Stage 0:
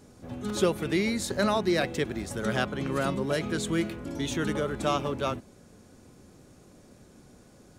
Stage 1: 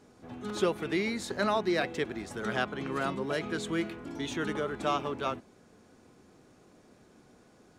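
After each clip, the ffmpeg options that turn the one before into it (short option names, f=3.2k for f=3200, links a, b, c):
-af "lowpass=f=3.1k:p=1,lowshelf=f=200:g=-12,bandreject=f=560:w=12"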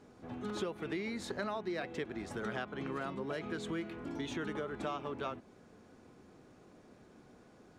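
-af "highshelf=f=4.7k:g=-8,acompressor=threshold=-36dB:ratio=4"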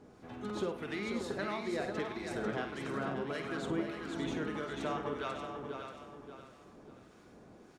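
-filter_complex "[0:a]asplit=2[a][b];[b]aecho=0:1:51|104|491:0.376|0.168|0.473[c];[a][c]amix=inputs=2:normalize=0,acrossover=split=1100[d][e];[d]aeval=exprs='val(0)*(1-0.5/2+0.5/2*cos(2*PI*1.6*n/s))':c=same[f];[e]aeval=exprs='val(0)*(1-0.5/2-0.5/2*cos(2*PI*1.6*n/s))':c=same[g];[f][g]amix=inputs=2:normalize=0,asplit=2[h][i];[i]aecho=0:1:583|1166|1749|2332:0.398|0.123|0.0383|0.0119[j];[h][j]amix=inputs=2:normalize=0,volume=2.5dB"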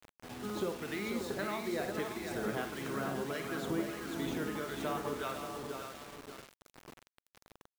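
-af "acrusher=bits=7:mix=0:aa=0.000001"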